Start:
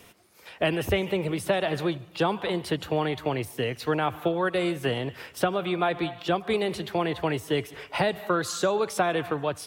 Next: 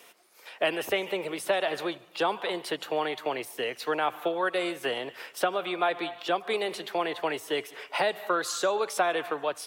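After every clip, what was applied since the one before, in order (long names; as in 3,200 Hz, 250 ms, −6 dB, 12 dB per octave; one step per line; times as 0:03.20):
high-pass filter 440 Hz 12 dB per octave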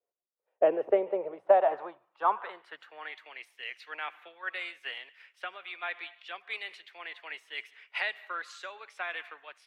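band-pass filter sweep 510 Hz → 2,100 Hz, 0:01.02–0:03.26
multiband upward and downward expander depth 100%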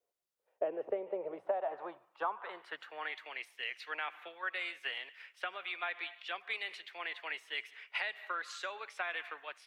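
downward compressor 4 to 1, threshold −37 dBFS, peak gain reduction 18 dB
level +2.5 dB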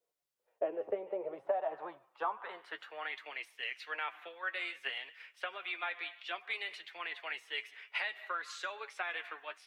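flanger 0.58 Hz, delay 6 ms, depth 4 ms, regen +46%
level +4 dB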